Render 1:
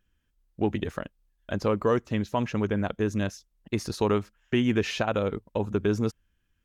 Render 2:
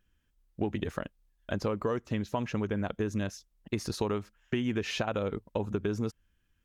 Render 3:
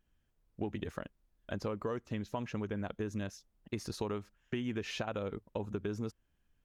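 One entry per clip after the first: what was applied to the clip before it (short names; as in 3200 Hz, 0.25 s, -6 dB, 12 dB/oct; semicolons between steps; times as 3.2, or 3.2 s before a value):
compressor, threshold -27 dBFS, peak gain reduction 8.5 dB
added noise brown -70 dBFS; gain -6 dB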